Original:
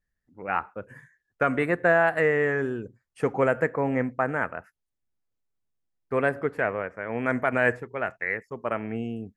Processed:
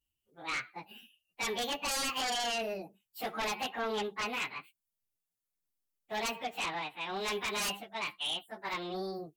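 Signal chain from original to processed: frequency-domain pitch shifter +8.5 st; pre-emphasis filter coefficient 0.8; sine folder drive 14 dB, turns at -21 dBFS; trim -9 dB

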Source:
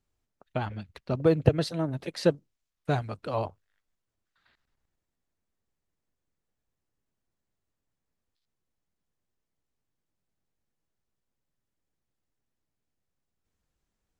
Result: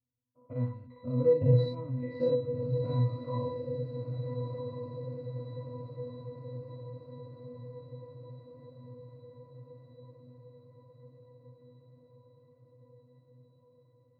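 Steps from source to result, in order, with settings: every event in the spectrogram widened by 120 ms; level-controlled noise filter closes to 1.1 kHz, open at -18 dBFS; pitch-class resonator B, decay 0.4 s; on a send: echo that smears into a reverb 1309 ms, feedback 66%, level -7.5 dB; on the sum: trim +5 dB

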